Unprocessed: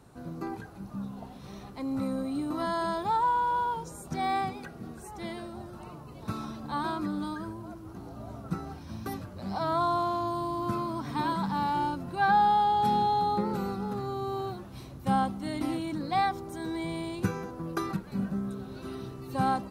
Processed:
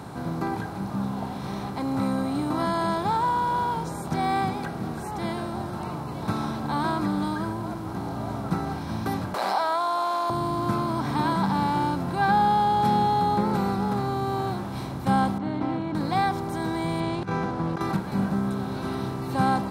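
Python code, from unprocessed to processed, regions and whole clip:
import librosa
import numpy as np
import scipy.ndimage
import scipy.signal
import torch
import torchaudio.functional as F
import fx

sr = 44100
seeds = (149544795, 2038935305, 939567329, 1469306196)

y = fx.chain(x, sr, fx.highpass(hz=580.0, slope=24),
    fx.env_flatten(amount_pct=70), at=(9.34, 10.3))
y = fx.chain(y, sr, fx.highpass(hz=150.0, slope=6),
    fx.spacing_loss(db_at_10k=44), at=(15.38, 15.95))
y = fx.chain(y, sr, fx.lowpass(hz=4600.0, slope=12),
    fx.over_compress(threshold_db=-34.0, ratio=-0.5), at=(17.0, 17.81))
y = fx.bin_compress(y, sr, power=0.6)
y = scipy.signal.sosfilt(scipy.signal.butter(2, 58.0, 'highpass', fs=sr, output='sos'), y)
y = fx.low_shelf(y, sr, hz=320.0, db=4.5)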